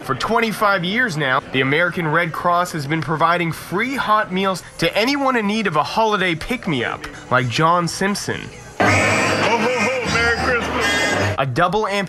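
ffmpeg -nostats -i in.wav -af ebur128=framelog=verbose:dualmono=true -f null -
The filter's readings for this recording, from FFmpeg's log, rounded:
Integrated loudness:
  I:         -15.0 LUFS
  Threshold: -25.1 LUFS
Loudness range:
  LRA:         1.8 LU
  Threshold: -35.2 LUFS
  LRA low:   -16.0 LUFS
  LRA high:  -14.2 LUFS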